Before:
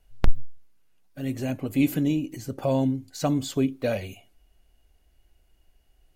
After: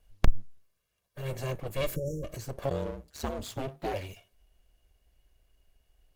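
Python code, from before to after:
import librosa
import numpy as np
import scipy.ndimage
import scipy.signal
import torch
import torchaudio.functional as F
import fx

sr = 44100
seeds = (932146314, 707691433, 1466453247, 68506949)

p1 = fx.lower_of_two(x, sr, delay_ms=1.8)
p2 = fx.spec_erase(p1, sr, start_s=1.96, length_s=0.28, low_hz=590.0, high_hz=5300.0)
p3 = fx.rider(p2, sr, range_db=10, speed_s=0.5)
p4 = p2 + (p3 * 10.0 ** (-2.0 / 20.0))
p5 = fx.ring_mod(p4, sr, carrier_hz=fx.line((2.69, 41.0), (3.93, 180.0)), at=(2.69, 3.93), fade=0.02)
y = p5 * 10.0 ** (-7.5 / 20.0)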